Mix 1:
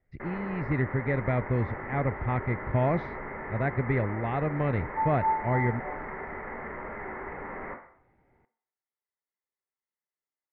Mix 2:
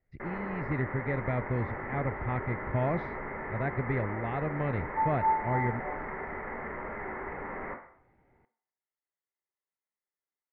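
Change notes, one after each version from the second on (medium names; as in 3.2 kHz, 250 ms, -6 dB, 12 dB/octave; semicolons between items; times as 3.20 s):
speech -4.0 dB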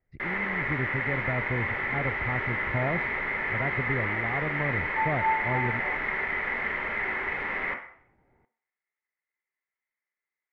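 first sound: remove Bessel low-pass 970 Hz, order 4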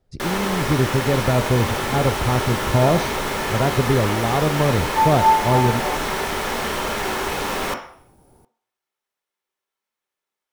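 speech: send on; first sound: add treble shelf 7.6 kHz -6 dB; master: remove four-pole ladder low-pass 2.1 kHz, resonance 85%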